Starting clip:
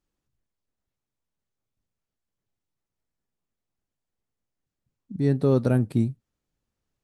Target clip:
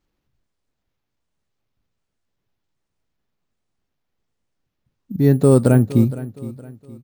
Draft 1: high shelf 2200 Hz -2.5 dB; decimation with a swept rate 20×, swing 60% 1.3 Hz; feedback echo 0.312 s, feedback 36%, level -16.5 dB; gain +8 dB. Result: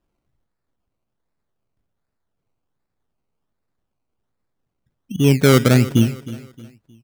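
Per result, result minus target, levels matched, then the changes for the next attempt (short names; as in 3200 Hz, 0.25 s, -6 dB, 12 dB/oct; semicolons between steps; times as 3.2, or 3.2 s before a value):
decimation with a swept rate: distortion +15 dB; echo 0.153 s early
change: decimation with a swept rate 4×, swing 60% 1.3 Hz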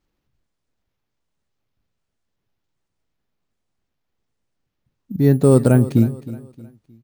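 echo 0.153 s early
change: feedback echo 0.465 s, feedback 36%, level -16.5 dB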